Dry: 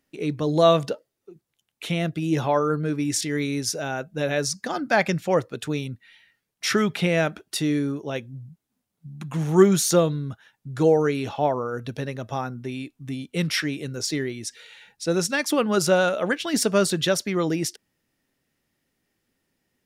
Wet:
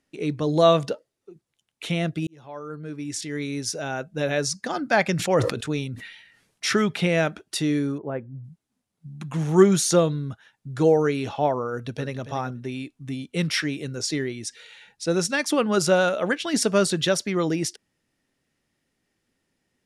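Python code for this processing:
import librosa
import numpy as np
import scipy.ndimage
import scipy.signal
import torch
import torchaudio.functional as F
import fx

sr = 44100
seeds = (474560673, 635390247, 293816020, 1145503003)

y = fx.sustainer(x, sr, db_per_s=63.0, at=(5.16, 6.72), fade=0.02)
y = fx.lowpass(y, sr, hz=1600.0, slope=24, at=(7.98, 8.44))
y = fx.echo_throw(y, sr, start_s=11.7, length_s=0.53, ms=280, feedback_pct=10, wet_db=-12.0)
y = fx.edit(y, sr, fx.fade_in_span(start_s=2.27, length_s=1.79), tone=tone)
y = scipy.signal.sosfilt(scipy.signal.butter(4, 11000.0, 'lowpass', fs=sr, output='sos'), y)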